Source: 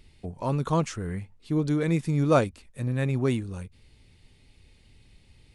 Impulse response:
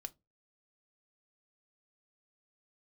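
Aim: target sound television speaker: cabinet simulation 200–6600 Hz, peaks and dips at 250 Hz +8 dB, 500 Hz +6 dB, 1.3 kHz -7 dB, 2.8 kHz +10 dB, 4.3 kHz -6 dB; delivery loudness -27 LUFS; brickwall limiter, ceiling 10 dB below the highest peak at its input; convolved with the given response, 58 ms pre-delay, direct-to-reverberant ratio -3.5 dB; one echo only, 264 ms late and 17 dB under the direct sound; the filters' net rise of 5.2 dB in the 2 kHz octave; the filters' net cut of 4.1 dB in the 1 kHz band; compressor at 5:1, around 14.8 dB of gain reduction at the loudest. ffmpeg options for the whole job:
-filter_complex "[0:a]equalizer=f=1000:t=o:g=-5,equalizer=f=2000:t=o:g=6,acompressor=threshold=0.02:ratio=5,alimiter=level_in=3.35:limit=0.0631:level=0:latency=1,volume=0.299,aecho=1:1:264:0.141,asplit=2[s0][s1];[1:a]atrim=start_sample=2205,adelay=58[s2];[s1][s2]afir=irnorm=-1:irlink=0,volume=2.37[s3];[s0][s3]amix=inputs=2:normalize=0,highpass=f=200:w=0.5412,highpass=f=200:w=1.3066,equalizer=f=250:t=q:w=4:g=8,equalizer=f=500:t=q:w=4:g=6,equalizer=f=1300:t=q:w=4:g=-7,equalizer=f=2800:t=q:w=4:g=10,equalizer=f=4300:t=q:w=4:g=-6,lowpass=f=6600:w=0.5412,lowpass=f=6600:w=1.3066,volume=3.98"

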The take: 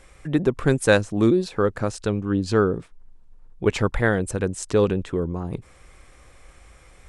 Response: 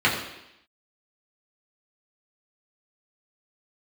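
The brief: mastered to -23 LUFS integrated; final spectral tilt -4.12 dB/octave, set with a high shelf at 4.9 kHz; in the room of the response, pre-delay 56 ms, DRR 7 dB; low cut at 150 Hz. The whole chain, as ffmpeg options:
-filter_complex "[0:a]highpass=150,highshelf=f=4900:g=-7.5,asplit=2[s0][s1];[1:a]atrim=start_sample=2205,adelay=56[s2];[s1][s2]afir=irnorm=-1:irlink=0,volume=0.0531[s3];[s0][s3]amix=inputs=2:normalize=0"

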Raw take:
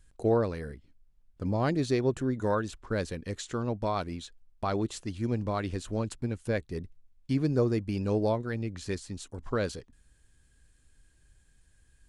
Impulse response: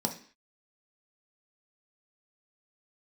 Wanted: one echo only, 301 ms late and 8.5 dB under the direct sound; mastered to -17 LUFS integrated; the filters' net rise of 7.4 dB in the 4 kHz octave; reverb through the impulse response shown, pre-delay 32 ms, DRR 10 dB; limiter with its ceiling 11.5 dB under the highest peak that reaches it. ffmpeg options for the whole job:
-filter_complex "[0:a]equalizer=f=4000:t=o:g=8.5,alimiter=level_in=1.33:limit=0.0631:level=0:latency=1,volume=0.75,aecho=1:1:301:0.376,asplit=2[s0][s1];[1:a]atrim=start_sample=2205,adelay=32[s2];[s1][s2]afir=irnorm=-1:irlink=0,volume=0.168[s3];[s0][s3]amix=inputs=2:normalize=0,volume=7.94"

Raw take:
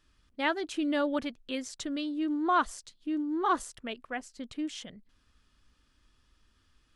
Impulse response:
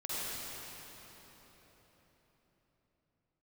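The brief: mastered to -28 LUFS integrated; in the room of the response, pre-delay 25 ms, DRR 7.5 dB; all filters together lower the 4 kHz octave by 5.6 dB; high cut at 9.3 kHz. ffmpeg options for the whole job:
-filter_complex "[0:a]lowpass=9300,equalizer=f=4000:t=o:g=-8,asplit=2[s0][s1];[1:a]atrim=start_sample=2205,adelay=25[s2];[s1][s2]afir=irnorm=-1:irlink=0,volume=0.237[s3];[s0][s3]amix=inputs=2:normalize=0,volume=1.58"

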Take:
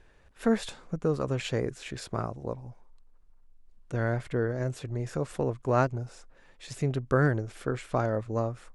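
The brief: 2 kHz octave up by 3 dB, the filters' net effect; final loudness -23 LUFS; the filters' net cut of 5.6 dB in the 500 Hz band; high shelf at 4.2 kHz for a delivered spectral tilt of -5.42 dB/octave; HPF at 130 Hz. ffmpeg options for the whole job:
-af "highpass=130,equalizer=f=500:t=o:g=-7,equalizer=f=2000:t=o:g=5.5,highshelf=f=4200:g=-3.5,volume=3.16"

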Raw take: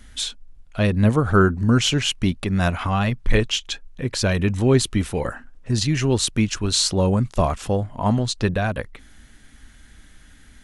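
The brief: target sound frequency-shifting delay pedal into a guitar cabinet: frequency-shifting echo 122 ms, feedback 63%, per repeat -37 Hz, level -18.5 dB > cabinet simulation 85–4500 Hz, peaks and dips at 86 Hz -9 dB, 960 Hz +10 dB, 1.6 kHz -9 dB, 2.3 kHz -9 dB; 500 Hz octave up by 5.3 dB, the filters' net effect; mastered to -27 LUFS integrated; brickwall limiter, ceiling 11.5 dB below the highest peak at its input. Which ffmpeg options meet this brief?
-filter_complex "[0:a]equalizer=f=500:t=o:g=6.5,alimiter=limit=0.188:level=0:latency=1,asplit=7[s0][s1][s2][s3][s4][s5][s6];[s1]adelay=122,afreqshift=-37,volume=0.119[s7];[s2]adelay=244,afreqshift=-74,volume=0.075[s8];[s3]adelay=366,afreqshift=-111,volume=0.0473[s9];[s4]adelay=488,afreqshift=-148,volume=0.0299[s10];[s5]adelay=610,afreqshift=-185,volume=0.0186[s11];[s6]adelay=732,afreqshift=-222,volume=0.0117[s12];[s0][s7][s8][s9][s10][s11][s12]amix=inputs=7:normalize=0,highpass=85,equalizer=f=86:t=q:w=4:g=-9,equalizer=f=960:t=q:w=4:g=10,equalizer=f=1600:t=q:w=4:g=-9,equalizer=f=2300:t=q:w=4:g=-9,lowpass=f=4500:w=0.5412,lowpass=f=4500:w=1.3066,volume=0.794"

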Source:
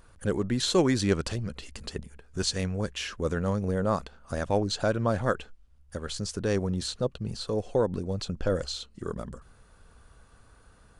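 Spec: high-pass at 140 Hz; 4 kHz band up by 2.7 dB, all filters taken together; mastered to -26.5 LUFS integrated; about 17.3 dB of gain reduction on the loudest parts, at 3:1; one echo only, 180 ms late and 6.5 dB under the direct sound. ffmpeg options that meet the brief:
-af "highpass=140,equalizer=f=4000:t=o:g=3,acompressor=threshold=0.00631:ratio=3,aecho=1:1:180:0.473,volume=6.68"

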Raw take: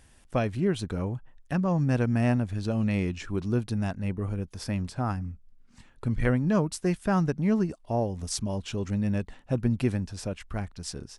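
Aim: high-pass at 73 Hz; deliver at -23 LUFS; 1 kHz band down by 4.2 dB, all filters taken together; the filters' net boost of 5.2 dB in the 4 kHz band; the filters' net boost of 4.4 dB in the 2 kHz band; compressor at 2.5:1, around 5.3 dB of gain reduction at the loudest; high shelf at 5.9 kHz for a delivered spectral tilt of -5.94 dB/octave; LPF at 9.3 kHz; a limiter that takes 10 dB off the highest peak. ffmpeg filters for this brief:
-af "highpass=73,lowpass=9300,equalizer=f=1000:t=o:g=-8.5,equalizer=f=2000:t=o:g=7,equalizer=f=4000:t=o:g=4,highshelf=f=5900:g=4,acompressor=threshold=0.0398:ratio=2.5,volume=3.55,alimiter=limit=0.224:level=0:latency=1"

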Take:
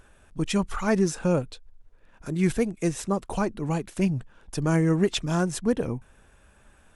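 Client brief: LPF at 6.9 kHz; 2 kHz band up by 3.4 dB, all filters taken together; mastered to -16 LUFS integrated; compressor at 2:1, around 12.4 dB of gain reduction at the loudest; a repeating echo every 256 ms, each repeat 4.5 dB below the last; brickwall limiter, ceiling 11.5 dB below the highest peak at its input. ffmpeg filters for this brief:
-af "lowpass=6900,equalizer=f=2000:t=o:g=4.5,acompressor=threshold=0.00891:ratio=2,alimiter=level_in=2.99:limit=0.0631:level=0:latency=1,volume=0.335,aecho=1:1:256|512|768|1024|1280|1536|1792|2048|2304:0.596|0.357|0.214|0.129|0.0772|0.0463|0.0278|0.0167|0.01,volume=21.1"

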